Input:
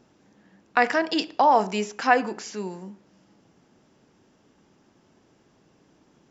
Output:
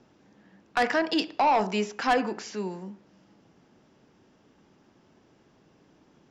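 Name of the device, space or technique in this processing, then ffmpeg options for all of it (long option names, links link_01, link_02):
one-band saturation: -filter_complex "[0:a]lowpass=5700,acrossover=split=240|4400[link_01][link_02][link_03];[link_02]asoftclip=type=tanh:threshold=-17dB[link_04];[link_01][link_04][link_03]amix=inputs=3:normalize=0"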